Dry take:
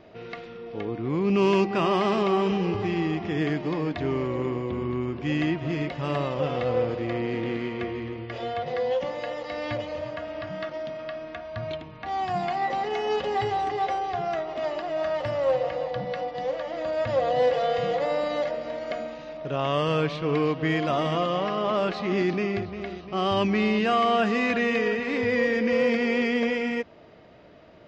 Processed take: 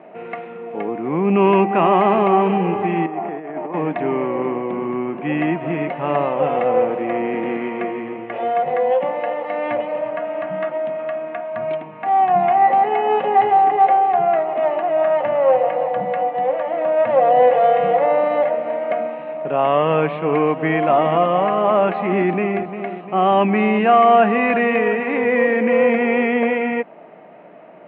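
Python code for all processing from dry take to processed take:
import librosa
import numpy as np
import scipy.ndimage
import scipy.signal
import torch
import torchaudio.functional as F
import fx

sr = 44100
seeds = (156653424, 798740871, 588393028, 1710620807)

y = fx.chain(x, sr, fx.cvsd(bps=64000),
    fx.bandpass_q(hz=700.0, q=0.87),
    fx.over_compress(threshold_db=-34.0, ratio=-0.5), at=(3.06, 3.74))
y = scipy.signal.sosfilt(scipy.signal.ellip(3, 1.0, 40, [170.0, 2500.0], 'bandpass', fs=sr, output='sos'), y)
y = fx.peak_eq(y, sr, hz=790.0, db=8.0, octaves=0.76)
y = F.gain(torch.from_numpy(y), 6.0).numpy()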